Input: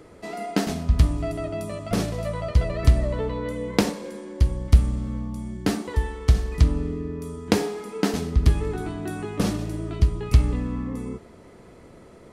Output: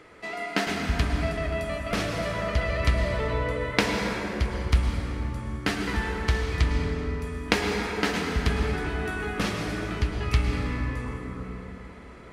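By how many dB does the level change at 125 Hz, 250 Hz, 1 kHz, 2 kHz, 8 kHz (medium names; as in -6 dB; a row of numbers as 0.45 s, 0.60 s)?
-5.0 dB, -3.5 dB, +2.5 dB, +8.5 dB, -2.0 dB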